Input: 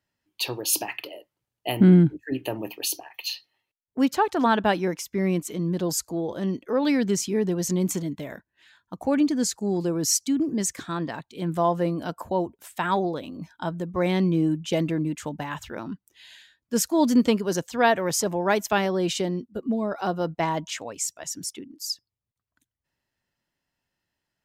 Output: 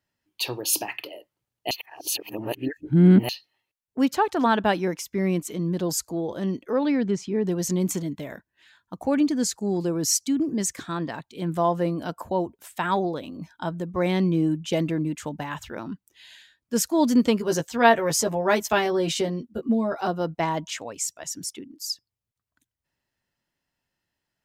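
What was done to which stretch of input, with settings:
0:01.71–0:03.29: reverse
0:06.83–0:07.46: head-to-tape spacing loss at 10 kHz 20 dB
0:17.39–0:20.08: double-tracking delay 13 ms −4 dB

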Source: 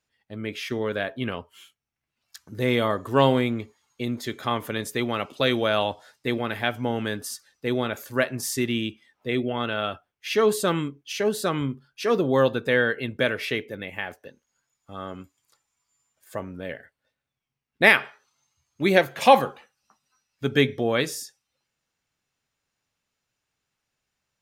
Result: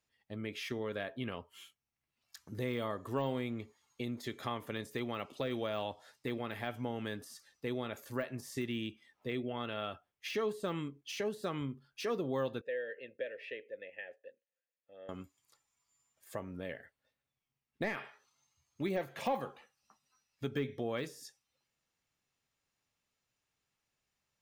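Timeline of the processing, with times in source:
0:12.61–0:15.09: formant filter e
whole clip: de-essing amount 85%; notch filter 1,500 Hz, Q 16; downward compressor 2 to 1, threshold −35 dBFS; level −4.5 dB

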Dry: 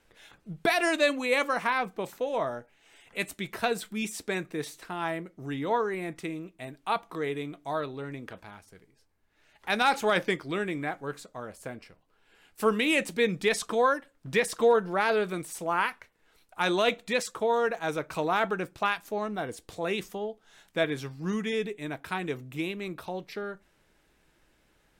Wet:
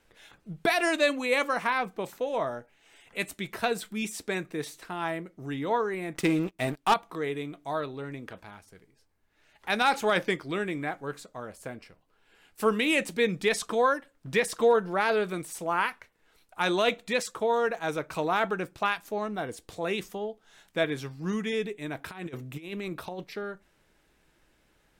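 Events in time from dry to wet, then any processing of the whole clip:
0:06.15–0:06.94: leveller curve on the samples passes 3
0:21.95–0:23.24: compressor whose output falls as the input rises −36 dBFS, ratio −0.5

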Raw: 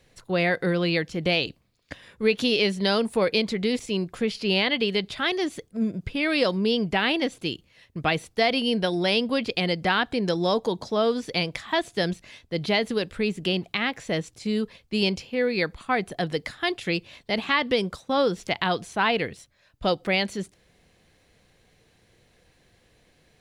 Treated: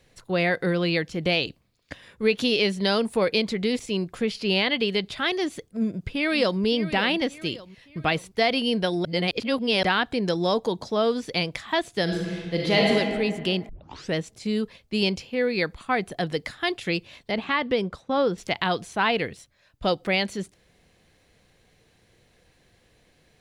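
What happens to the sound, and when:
0:05.68–0:06.60: delay throw 570 ms, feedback 45%, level −13.5 dB
0:09.05–0:09.83: reverse
0:12.03–0:12.92: thrown reverb, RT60 1.9 s, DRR −3 dB
0:13.69: tape start 0.46 s
0:17.31–0:18.38: low-pass filter 2,300 Hz 6 dB per octave

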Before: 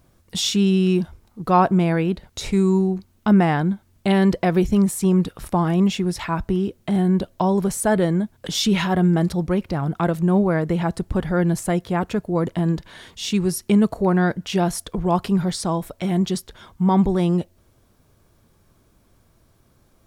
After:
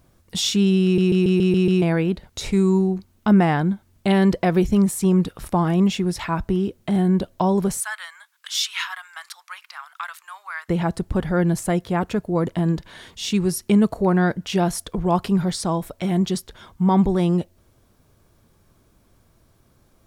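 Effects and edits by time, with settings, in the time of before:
0:00.84: stutter in place 0.14 s, 7 plays
0:07.80–0:10.69: Butterworth high-pass 1,100 Hz

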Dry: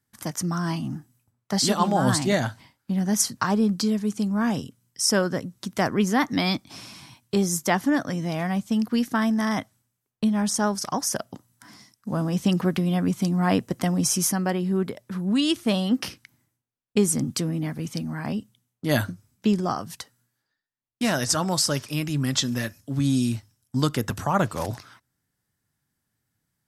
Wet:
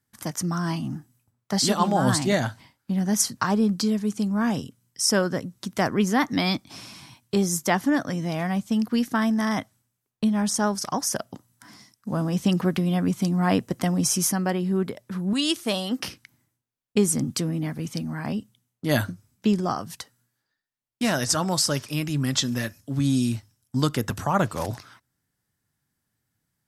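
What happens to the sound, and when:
0:15.33–0:16.00: bass and treble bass −10 dB, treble +5 dB

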